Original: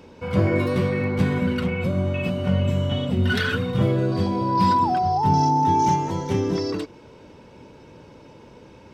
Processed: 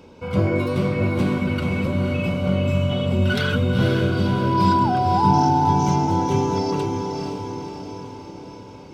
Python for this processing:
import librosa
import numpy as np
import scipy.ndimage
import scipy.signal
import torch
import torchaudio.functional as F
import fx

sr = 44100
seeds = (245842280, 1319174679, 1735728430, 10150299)

y = fx.notch(x, sr, hz=1800.0, q=5.7)
y = fx.echo_diffused(y, sr, ms=510, feedback_pct=56, wet_db=-4)